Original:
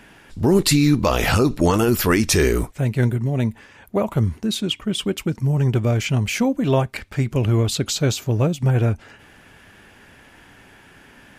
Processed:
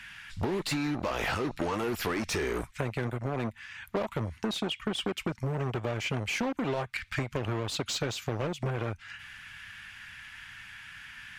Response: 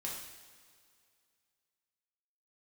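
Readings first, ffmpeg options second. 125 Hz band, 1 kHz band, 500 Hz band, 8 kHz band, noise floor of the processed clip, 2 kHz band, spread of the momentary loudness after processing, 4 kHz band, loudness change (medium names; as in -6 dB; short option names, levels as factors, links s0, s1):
-15.5 dB, -8.0 dB, -11.0 dB, -14.0 dB, -54 dBFS, -7.0 dB, 14 LU, -9.5 dB, -12.5 dB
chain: -filter_complex "[0:a]acrossover=split=150|1400[s0][s1][s2];[s1]acrusher=bits=3:mix=0:aa=0.5[s3];[s0][s3][s2]amix=inputs=3:normalize=0,alimiter=limit=0.335:level=0:latency=1:release=22,asplit=2[s4][s5];[s5]highpass=f=720:p=1,volume=5.62,asoftclip=type=tanh:threshold=0.335[s6];[s4][s6]amix=inputs=2:normalize=0,lowpass=f=2000:p=1,volume=0.501,acompressor=threshold=0.0355:ratio=6"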